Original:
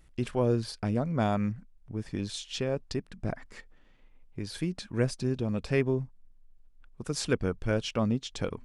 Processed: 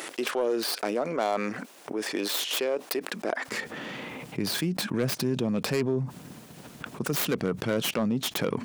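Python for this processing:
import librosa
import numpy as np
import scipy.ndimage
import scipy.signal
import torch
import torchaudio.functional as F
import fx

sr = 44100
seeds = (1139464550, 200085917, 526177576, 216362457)

y = fx.tracing_dist(x, sr, depth_ms=0.28)
y = fx.highpass(y, sr, hz=fx.steps((0.0, 340.0), (3.48, 140.0)), slope=24)
y = 10.0 ** (-18.0 / 20.0) * np.tanh(y / 10.0 ** (-18.0 / 20.0))
y = fx.env_flatten(y, sr, amount_pct=70)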